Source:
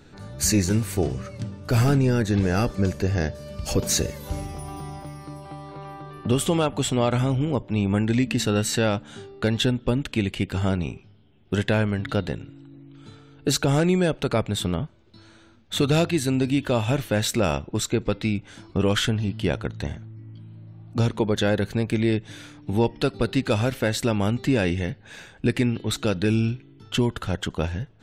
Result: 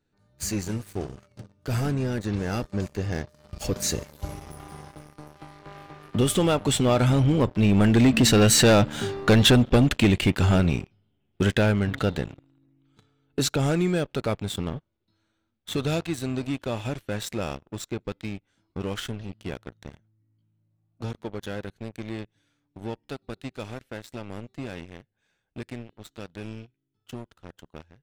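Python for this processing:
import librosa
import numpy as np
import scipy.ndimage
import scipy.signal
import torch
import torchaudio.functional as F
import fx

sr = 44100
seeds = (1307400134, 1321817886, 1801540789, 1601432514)

y = fx.doppler_pass(x, sr, speed_mps=6, closest_m=5.5, pass_at_s=9.11)
y = fx.leveller(y, sr, passes=3)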